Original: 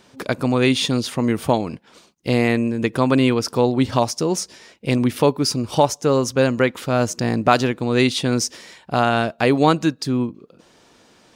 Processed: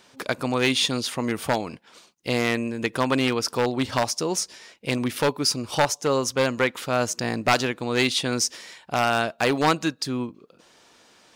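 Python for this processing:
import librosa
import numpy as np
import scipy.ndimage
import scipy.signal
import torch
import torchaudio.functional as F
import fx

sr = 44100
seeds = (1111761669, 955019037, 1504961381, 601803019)

y = np.minimum(x, 2.0 * 10.0 ** (-9.5 / 20.0) - x)
y = fx.low_shelf(y, sr, hz=480.0, db=-9.5)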